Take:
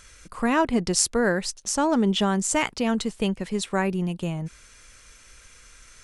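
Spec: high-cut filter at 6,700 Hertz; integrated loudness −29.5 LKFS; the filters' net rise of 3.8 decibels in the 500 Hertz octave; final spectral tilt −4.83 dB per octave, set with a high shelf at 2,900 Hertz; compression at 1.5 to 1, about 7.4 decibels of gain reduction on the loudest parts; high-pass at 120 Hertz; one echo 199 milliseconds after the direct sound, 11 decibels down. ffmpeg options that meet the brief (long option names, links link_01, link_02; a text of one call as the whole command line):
ffmpeg -i in.wav -af "highpass=120,lowpass=6700,equalizer=frequency=500:width_type=o:gain=5,highshelf=frequency=2900:gain=-4,acompressor=threshold=-37dB:ratio=1.5,aecho=1:1:199:0.282,volume=0.5dB" out.wav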